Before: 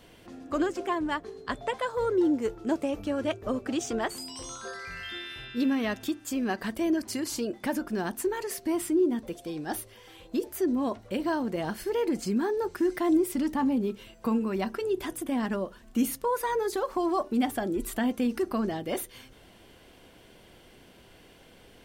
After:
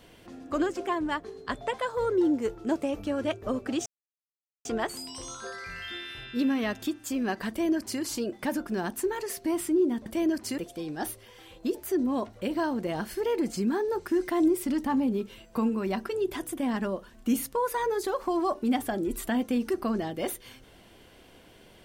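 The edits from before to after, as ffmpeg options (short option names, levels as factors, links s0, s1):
-filter_complex "[0:a]asplit=4[s0][s1][s2][s3];[s0]atrim=end=3.86,asetpts=PTS-STARTPTS,afade=t=out:st=3.856:d=0.004:c=hsin,apad=pad_dur=0.79[s4];[s1]atrim=start=3.86:end=9.272,asetpts=PTS-STARTPTS,afade=t=in:d=0.004:c=hsin[s5];[s2]atrim=start=6.698:end=7.222[s6];[s3]atrim=start=9.268[s7];[s4][s5]concat=n=2:v=0:a=1[s8];[s8][s6]acrossfade=d=0.004:c1=hsin:c2=hsin[s9];[s9][s7]acrossfade=d=0.004:c1=hsin:c2=hsin"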